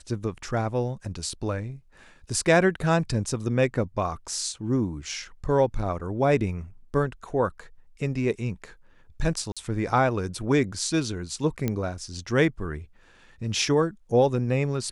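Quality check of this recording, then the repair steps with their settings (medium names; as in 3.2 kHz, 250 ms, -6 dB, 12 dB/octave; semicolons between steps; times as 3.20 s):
9.52–9.57 s: dropout 46 ms
11.68 s: pop -13 dBFS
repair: de-click; interpolate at 9.52 s, 46 ms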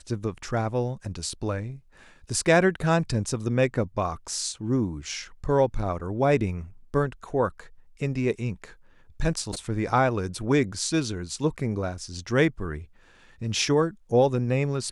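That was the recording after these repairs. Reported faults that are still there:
nothing left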